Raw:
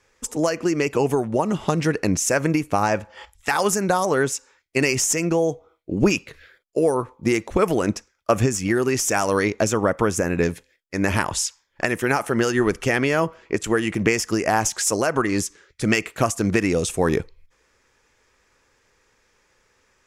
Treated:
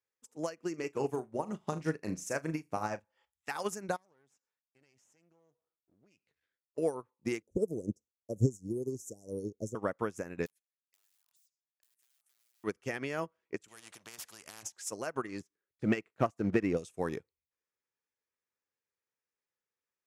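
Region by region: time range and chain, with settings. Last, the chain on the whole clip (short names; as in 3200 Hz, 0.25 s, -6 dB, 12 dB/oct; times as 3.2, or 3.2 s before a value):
0.7–3 bell 3000 Hz -3.5 dB 0.85 oct + flutter echo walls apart 6.5 m, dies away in 0.26 s
3.96–6.78 half-wave gain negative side -12 dB + LPF 9500 Hz + compressor 2:1, threshold -41 dBFS
7.42–9.75 Chebyshev band-stop 490–6600 Hz, order 3 + low shelf 120 Hz +9.5 dB
10.46–12.64 wrapped overs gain 19 dB + differentiator + compressor 5:1, threshold -36 dBFS
13.68–14.63 notch 2100 Hz, Q 19 + spectral compressor 4:1
15.4–16.77 LPF 1300 Hz 6 dB/oct + sample leveller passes 1
whole clip: HPF 100 Hz; upward expander 2.5:1, over -31 dBFS; gain -7 dB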